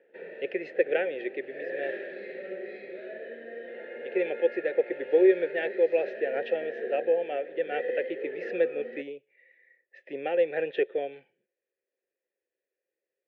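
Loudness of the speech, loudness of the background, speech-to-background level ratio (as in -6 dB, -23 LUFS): -29.0 LUFS, -39.0 LUFS, 10.0 dB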